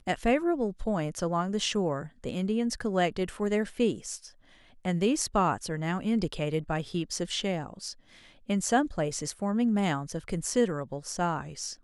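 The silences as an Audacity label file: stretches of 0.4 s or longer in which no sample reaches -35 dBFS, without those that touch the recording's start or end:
4.170000	4.850000	silence
7.920000	8.490000	silence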